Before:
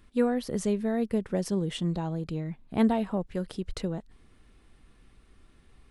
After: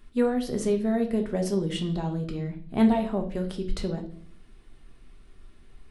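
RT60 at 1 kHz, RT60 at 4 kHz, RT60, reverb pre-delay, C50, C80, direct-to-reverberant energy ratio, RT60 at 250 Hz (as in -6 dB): 0.40 s, 0.50 s, 0.50 s, 3 ms, 10.5 dB, 15.5 dB, 3.0 dB, 0.80 s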